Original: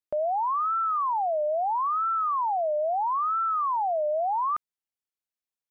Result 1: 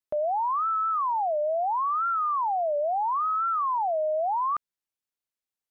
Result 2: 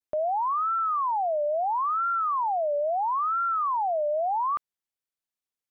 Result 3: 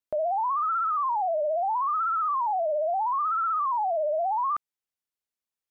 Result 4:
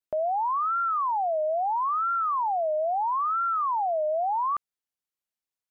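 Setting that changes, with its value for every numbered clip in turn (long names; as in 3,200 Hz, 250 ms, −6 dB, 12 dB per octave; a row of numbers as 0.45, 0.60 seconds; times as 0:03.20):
pitch vibrato, speed: 3.5, 0.63, 16, 1.5 Hertz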